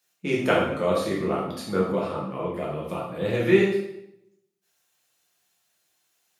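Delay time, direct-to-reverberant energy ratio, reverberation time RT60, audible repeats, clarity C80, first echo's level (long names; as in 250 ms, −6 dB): no echo audible, −5.0 dB, 0.80 s, no echo audible, 6.5 dB, no echo audible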